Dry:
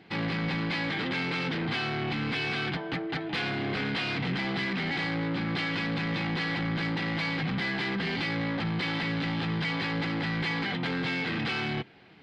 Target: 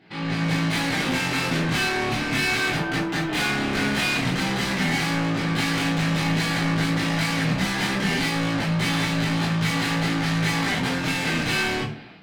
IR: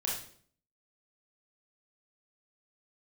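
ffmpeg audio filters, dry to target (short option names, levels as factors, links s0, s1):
-filter_complex "[0:a]dynaudnorm=f=150:g=5:m=4.22,asoftclip=type=tanh:threshold=0.0708[s0];[1:a]atrim=start_sample=2205,asetrate=70560,aresample=44100[s1];[s0][s1]afir=irnorm=-1:irlink=0,volume=1.19"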